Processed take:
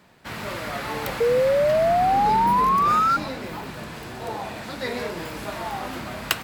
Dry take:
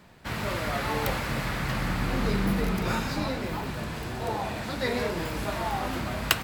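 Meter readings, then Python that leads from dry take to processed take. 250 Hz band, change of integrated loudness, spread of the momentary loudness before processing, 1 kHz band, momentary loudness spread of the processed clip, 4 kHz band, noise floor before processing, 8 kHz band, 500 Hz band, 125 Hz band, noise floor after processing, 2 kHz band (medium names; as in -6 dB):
-2.0 dB, +7.0 dB, 6 LU, +11.5 dB, 16 LU, 0.0 dB, -36 dBFS, 0.0 dB, +9.0 dB, -4.5 dB, -37 dBFS, 0.0 dB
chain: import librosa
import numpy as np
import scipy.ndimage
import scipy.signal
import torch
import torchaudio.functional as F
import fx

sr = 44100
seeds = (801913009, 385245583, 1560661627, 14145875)

y = fx.low_shelf(x, sr, hz=98.0, db=-11.5)
y = fx.spec_paint(y, sr, seeds[0], shape='rise', start_s=1.2, length_s=1.97, low_hz=460.0, high_hz=1400.0, level_db=-19.0)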